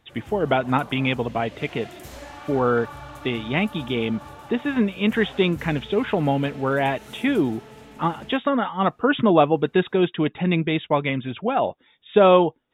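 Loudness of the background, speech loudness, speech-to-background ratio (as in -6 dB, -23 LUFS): -41.5 LUFS, -22.5 LUFS, 19.0 dB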